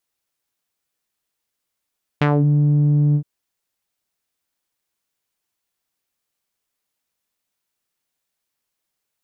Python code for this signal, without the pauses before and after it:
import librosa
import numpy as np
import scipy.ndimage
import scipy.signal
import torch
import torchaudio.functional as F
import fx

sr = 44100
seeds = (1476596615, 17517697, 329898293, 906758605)

y = fx.sub_voice(sr, note=50, wave='saw', cutoff_hz=200.0, q=1.6, env_oct=4.0, env_s=0.23, attack_ms=5.3, decay_s=0.06, sustain_db=-2, release_s=0.08, note_s=0.94, slope=12)